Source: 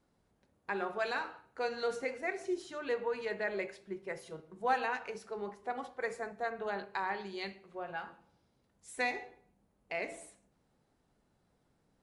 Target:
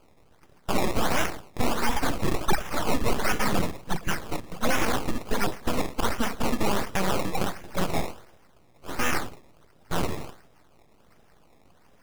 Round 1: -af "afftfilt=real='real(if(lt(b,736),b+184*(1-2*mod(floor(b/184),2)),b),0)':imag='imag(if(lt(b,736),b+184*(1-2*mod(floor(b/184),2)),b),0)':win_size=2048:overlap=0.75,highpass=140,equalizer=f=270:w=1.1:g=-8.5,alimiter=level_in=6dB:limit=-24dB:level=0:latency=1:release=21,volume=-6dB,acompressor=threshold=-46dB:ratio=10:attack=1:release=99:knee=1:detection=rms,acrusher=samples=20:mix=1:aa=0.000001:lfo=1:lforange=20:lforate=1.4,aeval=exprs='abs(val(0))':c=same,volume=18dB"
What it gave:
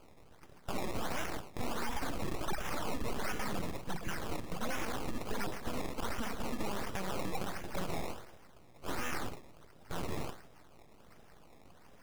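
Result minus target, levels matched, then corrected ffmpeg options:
compressor: peak gain reduction +14 dB
-af "afftfilt=real='real(if(lt(b,736),b+184*(1-2*mod(floor(b/184),2)),b),0)':imag='imag(if(lt(b,736),b+184*(1-2*mod(floor(b/184),2)),b),0)':win_size=2048:overlap=0.75,highpass=140,equalizer=f=270:w=1.1:g=-8.5,alimiter=level_in=6dB:limit=-24dB:level=0:latency=1:release=21,volume=-6dB,acrusher=samples=20:mix=1:aa=0.000001:lfo=1:lforange=20:lforate=1.4,aeval=exprs='abs(val(0))':c=same,volume=18dB"

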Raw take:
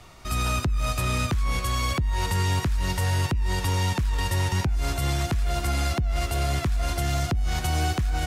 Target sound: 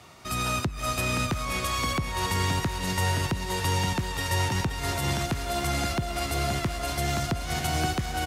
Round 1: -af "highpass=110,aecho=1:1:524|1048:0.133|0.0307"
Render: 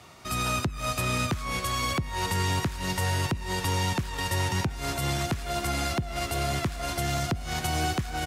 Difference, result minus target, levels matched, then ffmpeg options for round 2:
echo-to-direct -11.5 dB
-af "highpass=110,aecho=1:1:524|1048|1572:0.501|0.115|0.0265"

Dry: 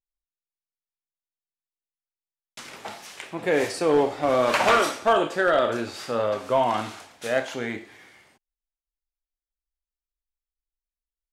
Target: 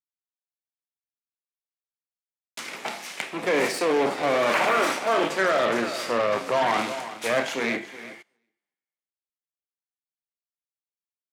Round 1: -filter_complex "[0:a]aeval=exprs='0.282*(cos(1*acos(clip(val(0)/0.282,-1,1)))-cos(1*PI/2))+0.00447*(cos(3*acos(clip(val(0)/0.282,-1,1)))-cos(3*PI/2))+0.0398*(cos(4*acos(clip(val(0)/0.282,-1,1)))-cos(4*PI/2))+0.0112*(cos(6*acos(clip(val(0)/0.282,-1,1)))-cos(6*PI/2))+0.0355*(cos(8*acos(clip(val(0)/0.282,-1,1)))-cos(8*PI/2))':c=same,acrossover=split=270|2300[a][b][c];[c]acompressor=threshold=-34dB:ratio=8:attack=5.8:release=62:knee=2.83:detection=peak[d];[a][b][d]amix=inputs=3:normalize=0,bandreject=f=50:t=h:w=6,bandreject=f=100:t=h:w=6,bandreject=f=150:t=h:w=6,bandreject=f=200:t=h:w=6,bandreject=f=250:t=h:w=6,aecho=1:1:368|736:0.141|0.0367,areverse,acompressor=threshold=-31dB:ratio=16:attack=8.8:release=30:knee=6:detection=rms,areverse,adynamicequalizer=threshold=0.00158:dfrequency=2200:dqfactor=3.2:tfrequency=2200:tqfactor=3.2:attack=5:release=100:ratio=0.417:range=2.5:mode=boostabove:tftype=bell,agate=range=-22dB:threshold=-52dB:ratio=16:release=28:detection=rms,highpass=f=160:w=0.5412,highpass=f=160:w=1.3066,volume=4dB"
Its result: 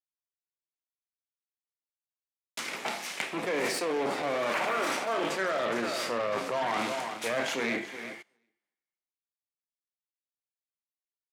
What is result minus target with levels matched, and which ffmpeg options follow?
compressor: peak gain reduction +8 dB
-filter_complex "[0:a]aeval=exprs='0.282*(cos(1*acos(clip(val(0)/0.282,-1,1)))-cos(1*PI/2))+0.00447*(cos(3*acos(clip(val(0)/0.282,-1,1)))-cos(3*PI/2))+0.0398*(cos(4*acos(clip(val(0)/0.282,-1,1)))-cos(4*PI/2))+0.0112*(cos(6*acos(clip(val(0)/0.282,-1,1)))-cos(6*PI/2))+0.0355*(cos(8*acos(clip(val(0)/0.282,-1,1)))-cos(8*PI/2))':c=same,acrossover=split=270|2300[a][b][c];[c]acompressor=threshold=-34dB:ratio=8:attack=5.8:release=62:knee=2.83:detection=peak[d];[a][b][d]amix=inputs=3:normalize=0,bandreject=f=50:t=h:w=6,bandreject=f=100:t=h:w=6,bandreject=f=150:t=h:w=6,bandreject=f=200:t=h:w=6,bandreject=f=250:t=h:w=6,aecho=1:1:368|736:0.141|0.0367,areverse,acompressor=threshold=-22.5dB:ratio=16:attack=8.8:release=30:knee=6:detection=rms,areverse,adynamicequalizer=threshold=0.00158:dfrequency=2200:dqfactor=3.2:tfrequency=2200:tqfactor=3.2:attack=5:release=100:ratio=0.417:range=2.5:mode=boostabove:tftype=bell,agate=range=-22dB:threshold=-52dB:ratio=16:release=28:detection=rms,highpass=f=160:w=0.5412,highpass=f=160:w=1.3066,volume=4dB"

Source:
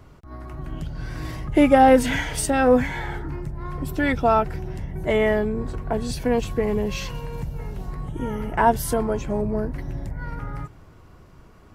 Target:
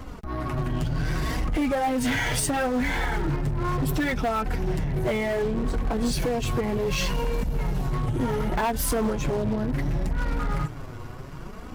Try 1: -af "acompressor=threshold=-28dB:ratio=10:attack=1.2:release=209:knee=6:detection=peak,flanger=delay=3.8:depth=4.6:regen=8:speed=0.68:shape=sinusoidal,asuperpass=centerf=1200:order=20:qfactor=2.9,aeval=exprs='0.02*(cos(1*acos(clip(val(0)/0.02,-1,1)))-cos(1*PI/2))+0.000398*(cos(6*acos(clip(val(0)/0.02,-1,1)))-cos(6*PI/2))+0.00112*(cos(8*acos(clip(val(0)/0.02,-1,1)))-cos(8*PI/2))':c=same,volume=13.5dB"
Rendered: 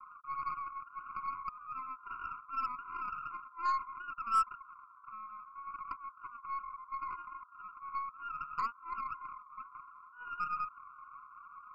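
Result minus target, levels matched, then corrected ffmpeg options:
1000 Hz band +8.0 dB
-af "acompressor=threshold=-28dB:ratio=10:attack=1.2:release=209:knee=6:detection=peak,flanger=delay=3.8:depth=4.6:regen=8:speed=0.68:shape=sinusoidal,aeval=exprs='0.02*(cos(1*acos(clip(val(0)/0.02,-1,1)))-cos(1*PI/2))+0.000398*(cos(6*acos(clip(val(0)/0.02,-1,1)))-cos(6*PI/2))+0.00112*(cos(8*acos(clip(val(0)/0.02,-1,1)))-cos(8*PI/2))':c=same,volume=13.5dB"

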